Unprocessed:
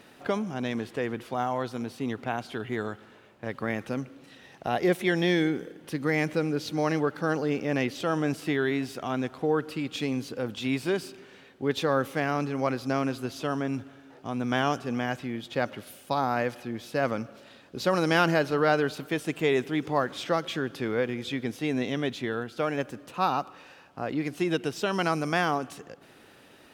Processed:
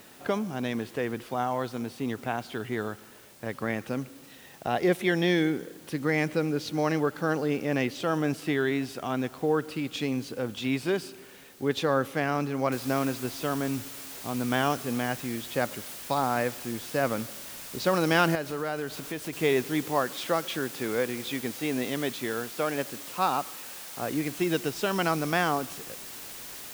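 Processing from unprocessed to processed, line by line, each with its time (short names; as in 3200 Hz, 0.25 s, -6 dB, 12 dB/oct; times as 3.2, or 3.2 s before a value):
12.72 noise floor step -55 dB -42 dB
18.35–19.33 compressor 2:1, threshold -34 dBFS
19.86–24.02 low shelf 120 Hz -9.5 dB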